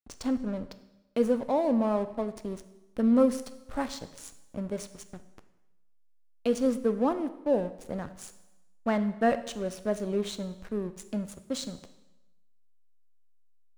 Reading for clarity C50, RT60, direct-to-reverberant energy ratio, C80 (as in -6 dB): 13.5 dB, 1.0 s, 10.5 dB, 15.5 dB